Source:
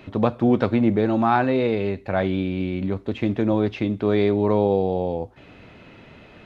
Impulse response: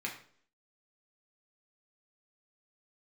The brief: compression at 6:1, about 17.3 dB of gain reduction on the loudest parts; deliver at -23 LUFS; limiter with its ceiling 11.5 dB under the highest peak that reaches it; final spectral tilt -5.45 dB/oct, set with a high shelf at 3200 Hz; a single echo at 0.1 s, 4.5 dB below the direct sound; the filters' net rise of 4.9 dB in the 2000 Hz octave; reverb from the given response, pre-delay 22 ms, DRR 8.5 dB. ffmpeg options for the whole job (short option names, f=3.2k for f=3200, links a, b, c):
-filter_complex "[0:a]equalizer=f=2k:t=o:g=5,highshelf=f=3.2k:g=4.5,acompressor=threshold=-33dB:ratio=6,alimiter=level_in=5.5dB:limit=-24dB:level=0:latency=1,volume=-5.5dB,aecho=1:1:100:0.596,asplit=2[a][b];[1:a]atrim=start_sample=2205,adelay=22[c];[b][c]afir=irnorm=-1:irlink=0,volume=-11.5dB[d];[a][d]amix=inputs=2:normalize=0,volume=15.5dB"